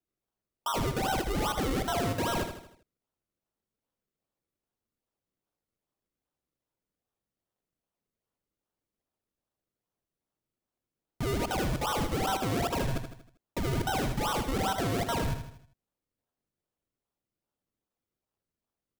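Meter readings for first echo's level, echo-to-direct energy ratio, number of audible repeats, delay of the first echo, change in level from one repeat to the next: -8.0 dB, -7.0 dB, 5, 79 ms, -6.5 dB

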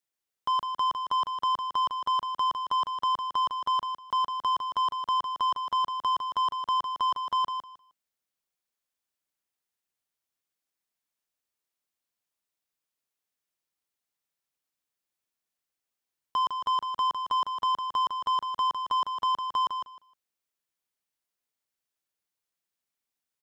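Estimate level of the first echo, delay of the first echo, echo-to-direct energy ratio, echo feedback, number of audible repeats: -7.0 dB, 0.155 s, -7.0 dB, 18%, 2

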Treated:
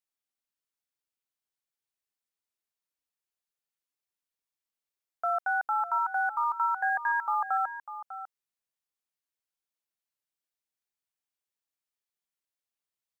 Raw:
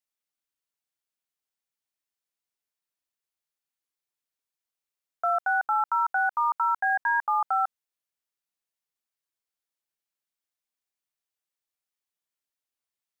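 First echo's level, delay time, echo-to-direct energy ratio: -12.0 dB, 0.598 s, -12.0 dB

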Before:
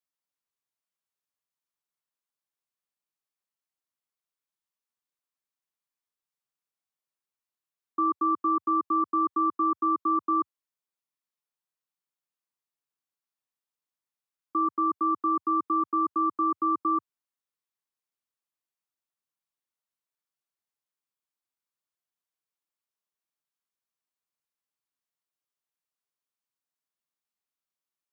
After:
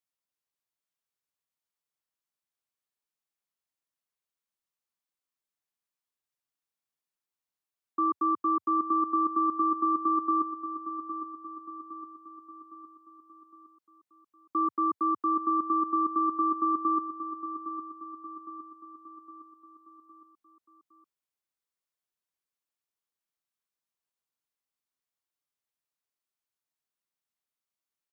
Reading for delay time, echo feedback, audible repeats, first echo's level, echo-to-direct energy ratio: 0.811 s, 50%, 5, -10.5 dB, -9.0 dB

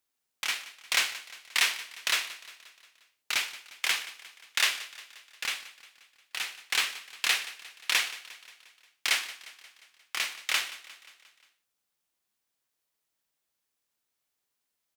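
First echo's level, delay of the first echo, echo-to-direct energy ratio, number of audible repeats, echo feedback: -17.0 dB, 0.177 s, -15.5 dB, 4, 57%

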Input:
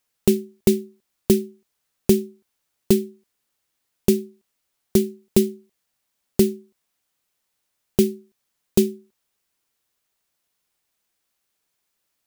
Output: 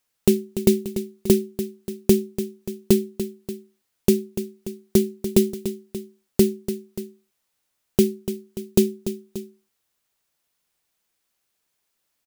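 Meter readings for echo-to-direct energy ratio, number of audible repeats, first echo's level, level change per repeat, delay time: -9.5 dB, 2, -11.0 dB, -4.5 dB, 0.291 s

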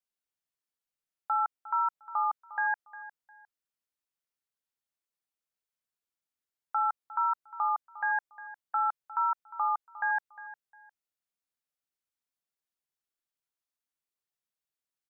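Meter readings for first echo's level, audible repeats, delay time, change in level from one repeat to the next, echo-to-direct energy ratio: -16.0 dB, 2, 0.355 s, -12.0 dB, -16.0 dB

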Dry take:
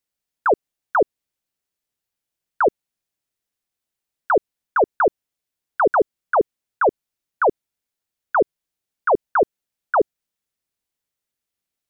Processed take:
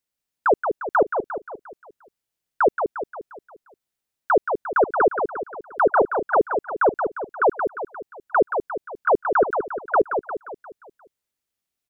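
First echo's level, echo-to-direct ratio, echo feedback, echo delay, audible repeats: -6.5 dB, -5.5 dB, 50%, 0.176 s, 5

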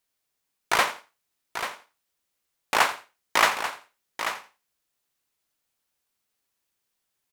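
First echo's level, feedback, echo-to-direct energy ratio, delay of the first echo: -15.5 dB, no steady repeat, -8.5 dB, 86 ms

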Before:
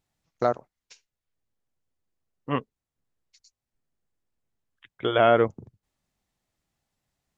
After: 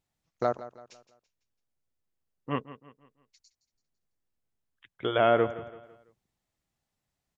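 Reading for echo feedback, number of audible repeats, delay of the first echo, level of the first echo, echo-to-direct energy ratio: 41%, 3, 0.167 s, -15.5 dB, -14.5 dB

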